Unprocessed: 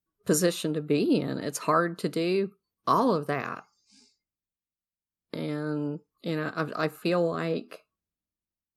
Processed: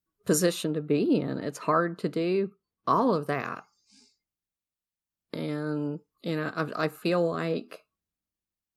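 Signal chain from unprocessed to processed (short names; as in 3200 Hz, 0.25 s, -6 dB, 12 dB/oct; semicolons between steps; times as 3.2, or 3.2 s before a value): 0.64–3.13 high shelf 4200 Hz -12 dB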